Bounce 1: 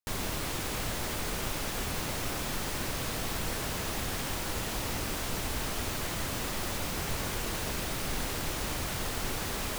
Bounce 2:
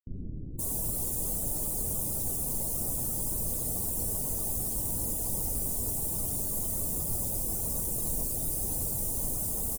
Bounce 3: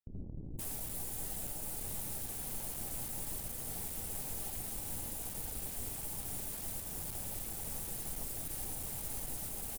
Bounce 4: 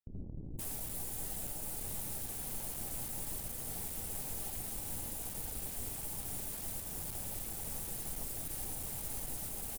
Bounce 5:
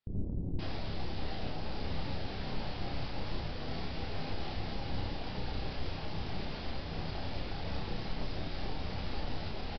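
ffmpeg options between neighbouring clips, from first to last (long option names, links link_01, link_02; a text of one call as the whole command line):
ffmpeg -i in.wav -filter_complex "[0:a]firequalizer=gain_entry='entry(300,0);entry(1600,-11);entry(9200,11)':delay=0.05:min_phase=1,afftdn=noise_reduction=16:noise_floor=-39,acrossover=split=330[link_01][link_02];[link_02]adelay=520[link_03];[link_01][link_03]amix=inputs=2:normalize=0" out.wav
ffmpeg -i in.wav -af "equalizer=frequency=810:width_type=o:width=0.3:gain=8.5,alimiter=limit=-22dB:level=0:latency=1:release=476,aeval=exprs='(tanh(63.1*val(0)+0.6)-tanh(0.6))/63.1':channel_layout=same,volume=-1.5dB" out.wav
ffmpeg -i in.wav -af anull out.wav
ffmpeg -i in.wav -filter_complex "[0:a]flanger=delay=9.8:depth=3.1:regen=-58:speed=0.37:shape=triangular,aresample=11025,aresample=44100,asplit=2[link_01][link_02];[link_02]adelay=31,volume=-4dB[link_03];[link_01][link_03]amix=inputs=2:normalize=0,volume=11.5dB" out.wav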